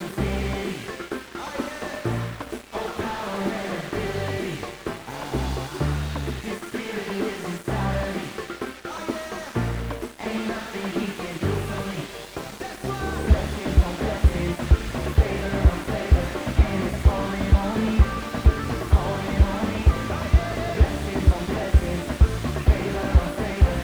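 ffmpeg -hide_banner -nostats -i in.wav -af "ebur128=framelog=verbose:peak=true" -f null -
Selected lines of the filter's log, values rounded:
Integrated loudness:
  I:         -25.3 LUFS
  Threshold: -35.3 LUFS
Loudness range:
  LRA:         7.1 LU
  Threshold: -45.3 LUFS
  LRA low:   -29.7 LUFS
  LRA high:  -22.6 LUFS
True peak:
  Peak:       -5.8 dBFS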